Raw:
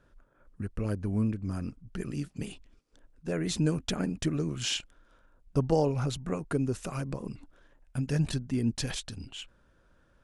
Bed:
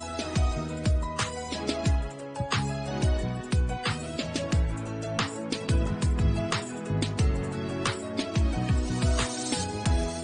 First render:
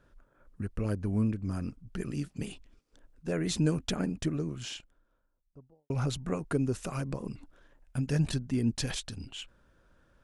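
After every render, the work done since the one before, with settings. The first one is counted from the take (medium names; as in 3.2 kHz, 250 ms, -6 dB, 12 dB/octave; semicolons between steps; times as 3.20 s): 3.70–5.90 s: studio fade out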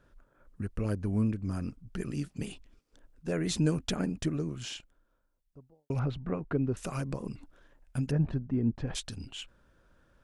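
5.99–6.77 s: distance through air 370 m; 8.11–8.95 s: low-pass 1.2 kHz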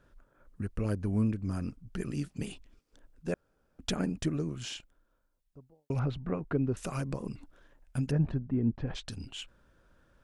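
3.34–3.79 s: room tone; 8.32–9.08 s: distance through air 160 m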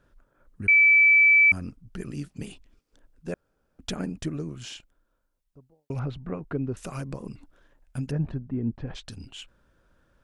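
0.68–1.52 s: bleep 2.31 kHz -13.5 dBFS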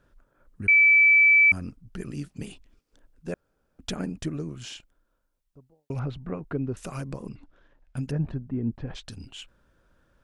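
7.29–7.97 s: low-pass 4.5 kHz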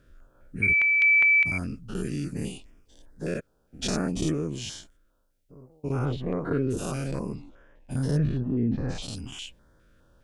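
every event in the spectrogram widened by 120 ms; step-sequenced notch 4.9 Hz 860–4100 Hz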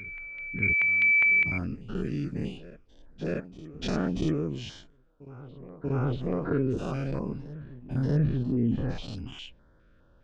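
distance through air 190 m; reverse echo 636 ms -17 dB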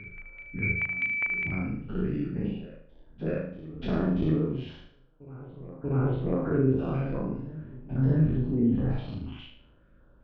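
distance through air 400 m; flutter echo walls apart 6.5 m, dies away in 0.55 s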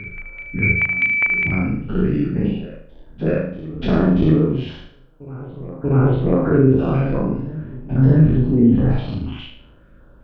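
trim +11 dB; peak limiter -3 dBFS, peak gain reduction 2 dB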